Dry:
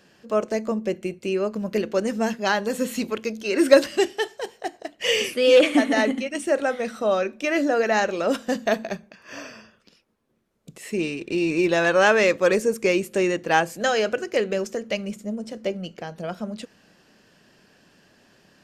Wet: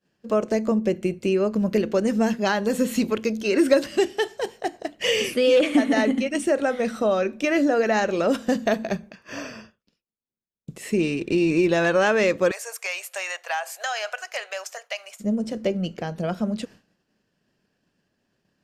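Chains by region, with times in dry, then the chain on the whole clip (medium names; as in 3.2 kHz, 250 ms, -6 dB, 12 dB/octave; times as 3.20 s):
12.51–15.20 s: elliptic high-pass 680 Hz, stop band 60 dB + treble shelf 10 kHz +5.5 dB + compression 3:1, threshold -27 dBFS
whole clip: expander -44 dBFS; compression 2:1, threshold -24 dBFS; bass shelf 320 Hz +7 dB; trim +2 dB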